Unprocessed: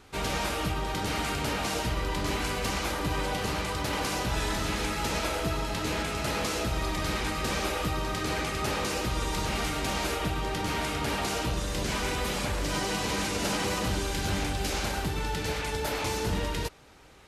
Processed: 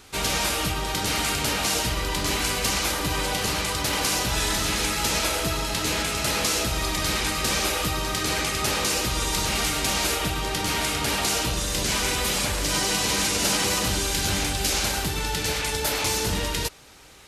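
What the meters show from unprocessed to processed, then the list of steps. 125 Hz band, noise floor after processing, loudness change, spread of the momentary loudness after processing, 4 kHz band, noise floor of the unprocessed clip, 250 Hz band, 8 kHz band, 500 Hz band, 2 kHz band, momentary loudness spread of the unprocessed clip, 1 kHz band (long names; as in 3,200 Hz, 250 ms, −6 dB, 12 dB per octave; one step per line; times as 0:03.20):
+2.0 dB, −28 dBFS, +6.5 dB, 3 LU, +9.0 dB, −33 dBFS, +2.0 dB, +11.5 dB, +2.5 dB, +5.5 dB, 2 LU, +3.0 dB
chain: high-shelf EQ 2,900 Hz +11 dB
level +2 dB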